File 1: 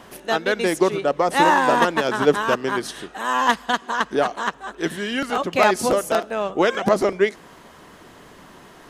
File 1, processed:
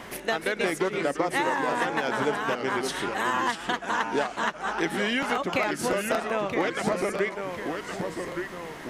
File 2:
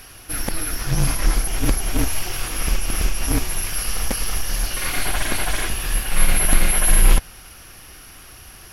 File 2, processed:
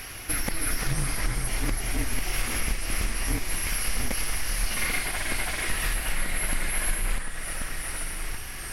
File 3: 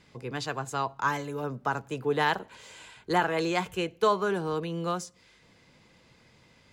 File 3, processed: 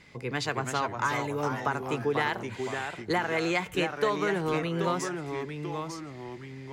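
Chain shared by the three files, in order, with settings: peaking EQ 2.1 kHz +8 dB 0.37 oct; compression 10:1, threshold -26 dBFS; ever faster or slower copies 287 ms, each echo -2 st, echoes 2, each echo -6 dB; trim +2.5 dB

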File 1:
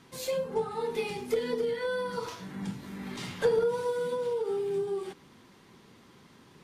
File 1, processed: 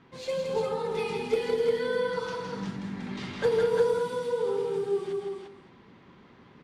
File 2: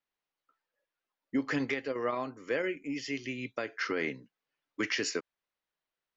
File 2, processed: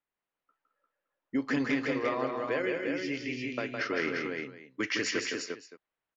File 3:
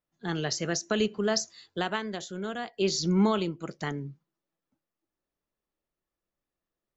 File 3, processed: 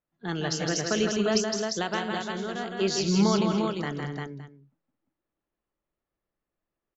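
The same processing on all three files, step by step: level-controlled noise filter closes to 2.5 kHz, open at -25 dBFS; multi-tap echo 161/217/270/326/349/566 ms -4.5/-11/-19.5/-18.5/-4.5/-18 dB

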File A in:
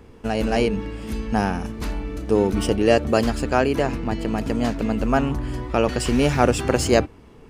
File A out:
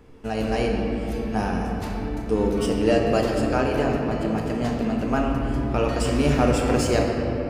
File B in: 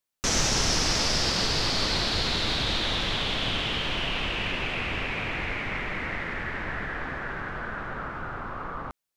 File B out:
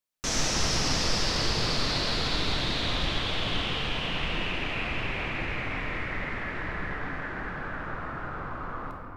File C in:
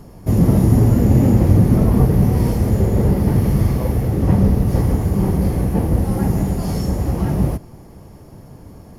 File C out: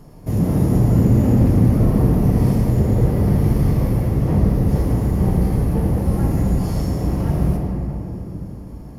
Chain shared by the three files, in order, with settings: in parallel at -10.5 dB: hard clipper -14.5 dBFS; on the sum: simulated room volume 210 m³, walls hard, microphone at 0.49 m; trim -7 dB

